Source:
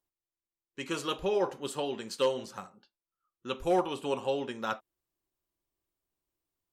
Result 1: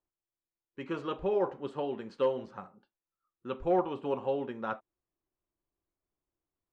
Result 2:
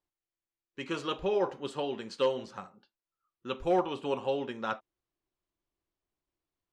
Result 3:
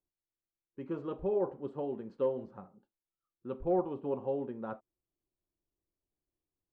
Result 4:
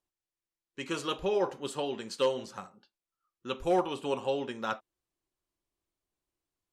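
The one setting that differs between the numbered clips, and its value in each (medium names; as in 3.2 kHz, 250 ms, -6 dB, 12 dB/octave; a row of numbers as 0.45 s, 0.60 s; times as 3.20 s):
Bessel low-pass, frequency: 1.4 kHz, 3.9 kHz, 520 Hz, 10 kHz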